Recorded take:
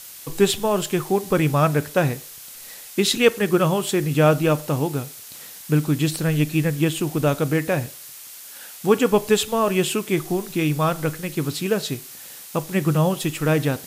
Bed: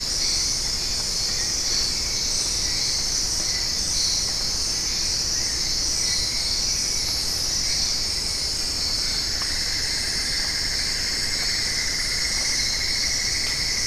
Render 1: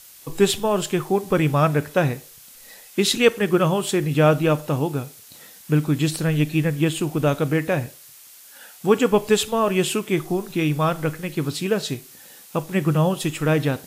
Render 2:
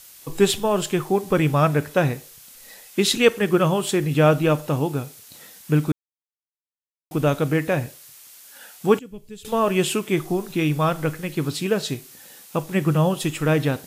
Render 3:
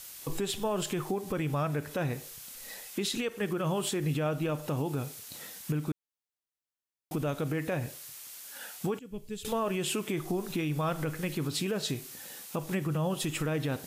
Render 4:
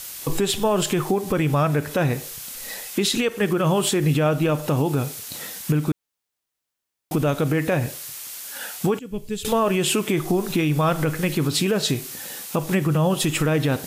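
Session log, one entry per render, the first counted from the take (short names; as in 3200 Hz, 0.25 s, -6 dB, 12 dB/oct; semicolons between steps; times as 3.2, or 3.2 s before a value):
noise print and reduce 6 dB
5.92–7.11 mute; 8.99–9.45 passive tone stack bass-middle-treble 10-0-1
compressor 6:1, threshold -25 dBFS, peak gain reduction 14.5 dB; limiter -22 dBFS, peak gain reduction 7.5 dB
gain +10.5 dB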